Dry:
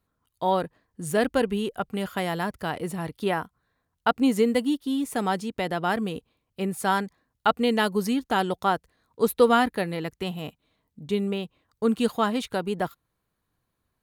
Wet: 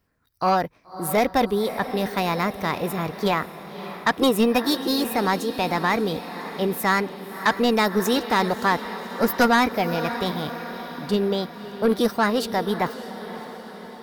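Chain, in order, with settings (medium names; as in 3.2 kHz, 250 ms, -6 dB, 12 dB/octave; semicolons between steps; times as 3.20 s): formant shift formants +4 st; echo that smears into a reverb 575 ms, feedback 59%, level -14 dB; saturation -16 dBFS, distortion -13 dB; trim +5 dB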